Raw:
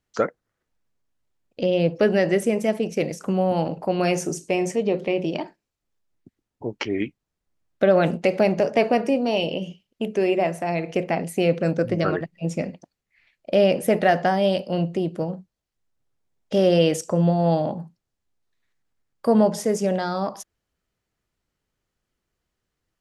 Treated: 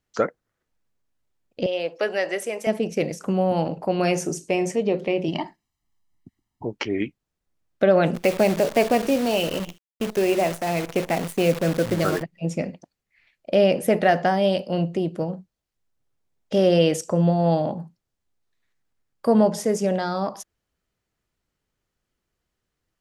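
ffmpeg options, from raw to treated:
-filter_complex "[0:a]asettb=1/sr,asplit=3[s0][s1][s2];[s0]atrim=end=1.664[s3];[s1]atrim=start=1.66:end=2.67,asetpts=PTS-STARTPTS,afade=t=in:d=0.004:c=qsin,afade=t=out:st=1.006:d=0.004:c=qsin,highpass=610[s4];[s2]atrim=start=2.666[s5];[s3][s4]acrossfade=d=0.004:c1=hsin:c2=qsin[s6];[s6][s5]acrossfade=d=0.004:c1=qsin:c2=hsin,asettb=1/sr,asplit=3[s7][s8][s9];[s7]atrim=end=5.284[s10];[s8]atrim=start=5.28:end=6.65,asetpts=PTS-STARTPTS,afade=t=in:d=0.004:c=qsin,afade=t=out:st=1.366:d=0.004:c=qsin,aecho=1:1:1:0.82,atrim=end_sample=60417[s11];[s9]atrim=start=6.646[s12];[s10][s11]acrossfade=d=0.004:c1=hsin:c2=qsin[s13];[s13][s12]acrossfade=d=0.004:c1=qsin:c2=hsin,asplit=3[s14][s15][s16];[s14]afade=t=out:st=8.14:d=0.02[s17];[s15]acrusher=bits=6:dc=4:mix=0:aa=0.000001,afade=t=in:st=8.14:d=0.02,afade=t=out:st=12.21:d=0.02[s18];[s16]afade=t=in:st=12.21:d=0.02[s19];[s17][s18][s19]amix=inputs=3:normalize=0"

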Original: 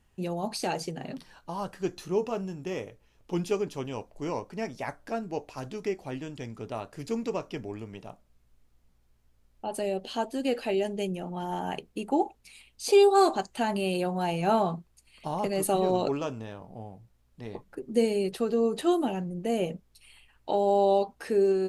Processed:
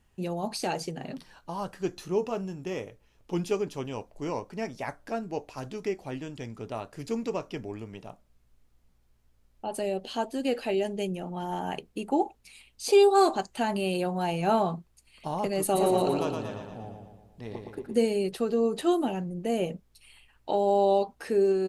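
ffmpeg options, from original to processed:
-filter_complex "[0:a]asplit=3[s0][s1][s2];[s0]afade=t=out:st=15.75:d=0.02[s3];[s1]aecho=1:1:116|232|348|464|580|696|812:0.596|0.322|0.174|0.0938|0.0506|0.0274|0.0148,afade=t=in:st=15.75:d=0.02,afade=t=out:st=17.98:d=0.02[s4];[s2]afade=t=in:st=17.98:d=0.02[s5];[s3][s4][s5]amix=inputs=3:normalize=0"

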